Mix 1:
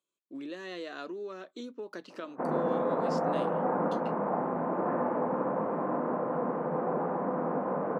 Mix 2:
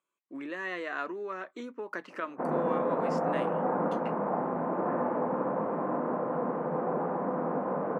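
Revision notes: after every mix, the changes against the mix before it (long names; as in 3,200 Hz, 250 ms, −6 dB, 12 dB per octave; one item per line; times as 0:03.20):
speech: add octave-band graphic EQ 1,000/2,000/4,000 Hz +8/+11/−9 dB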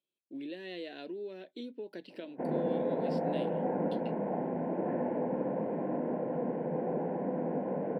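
speech: add octave-band graphic EQ 1,000/2,000/4,000 Hz −8/−11/+9 dB
master: add phaser with its sweep stopped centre 2,900 Hz, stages 4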